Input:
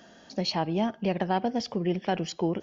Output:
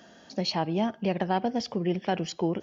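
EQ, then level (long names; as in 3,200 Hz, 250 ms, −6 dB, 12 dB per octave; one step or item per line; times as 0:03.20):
high-pass filter 44 Hz
0.0 dB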